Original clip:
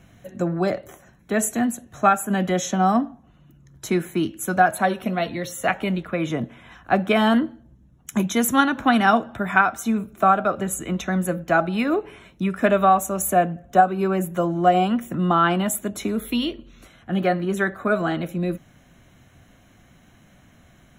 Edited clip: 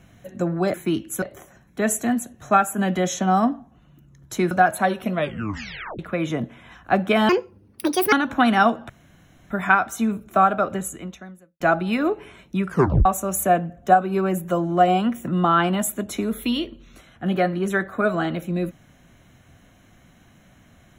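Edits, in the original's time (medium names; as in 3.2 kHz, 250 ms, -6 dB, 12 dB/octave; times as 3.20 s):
4.03–4.51 s: move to 0.74 s
5.13 s: tape stop 0.86 s
7.29–8.60 s: speed 157%
9.37 s: insert room tone 0.61 s
10.58–11.47 s: fade out quadratic
12.55 s: tape stop 0.37 s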